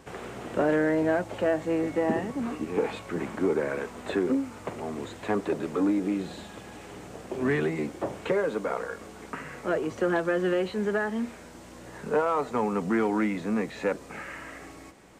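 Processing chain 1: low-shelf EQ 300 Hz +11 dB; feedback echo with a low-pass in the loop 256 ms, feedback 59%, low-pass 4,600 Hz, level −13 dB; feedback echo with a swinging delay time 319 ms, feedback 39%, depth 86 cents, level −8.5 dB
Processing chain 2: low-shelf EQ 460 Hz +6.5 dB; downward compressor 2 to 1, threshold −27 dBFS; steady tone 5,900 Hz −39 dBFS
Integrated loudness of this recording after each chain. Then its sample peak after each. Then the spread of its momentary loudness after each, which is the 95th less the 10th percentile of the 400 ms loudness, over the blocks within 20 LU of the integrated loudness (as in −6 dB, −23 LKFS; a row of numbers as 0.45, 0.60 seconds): −23.5, −29.5 LKFS; −8.0, −15.0 dBFS; 13, 9 LU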